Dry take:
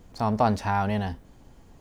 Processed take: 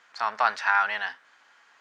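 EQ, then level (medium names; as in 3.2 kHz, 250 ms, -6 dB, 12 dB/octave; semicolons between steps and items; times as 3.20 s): resonant high-pass 1.5 kHz, resonance Q 2.6; distance through air 140 m; treble shelf 6.2 kHz +5.5 dB; +5.5 dB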